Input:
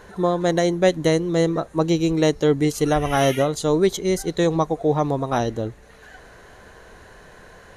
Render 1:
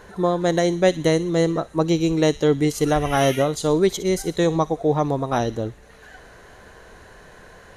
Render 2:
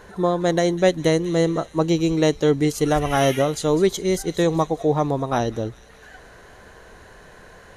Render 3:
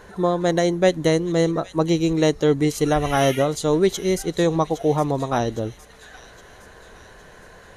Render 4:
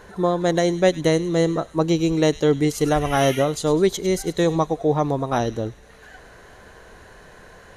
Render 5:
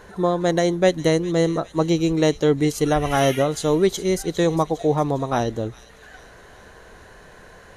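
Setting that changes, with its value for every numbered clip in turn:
feedback echo behind a high-pass, time: 60 ms, 201 ms, 813 ms, 101 ms, 405 ms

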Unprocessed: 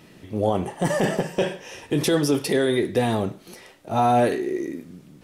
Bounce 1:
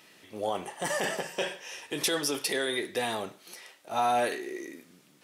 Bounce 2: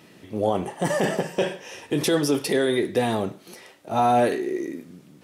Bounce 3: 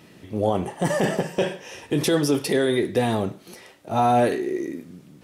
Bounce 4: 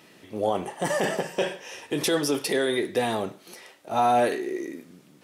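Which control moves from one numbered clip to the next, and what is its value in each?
high-pass, cutoff frequency: 1.4 kHz, 170 Hz, 46 Hz, 470 Hz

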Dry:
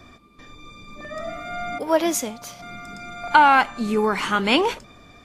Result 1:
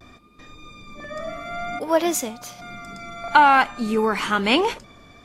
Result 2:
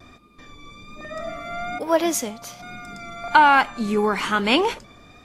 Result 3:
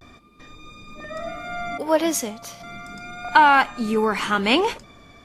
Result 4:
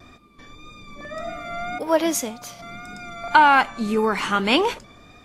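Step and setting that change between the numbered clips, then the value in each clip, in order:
vibrato, rate: 0.56 Hz, 1.2 Hz, 0.34 Hz, 1.8 Hz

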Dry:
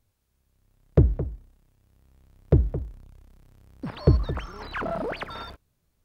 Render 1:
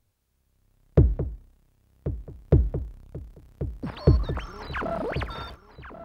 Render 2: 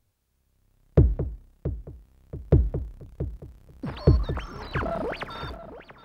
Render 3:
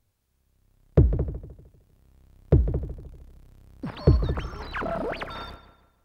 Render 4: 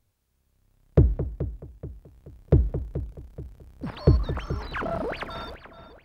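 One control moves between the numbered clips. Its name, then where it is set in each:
filtered feedback delay, time: 1086 ms, 678 ms, 153 ms, 429 ms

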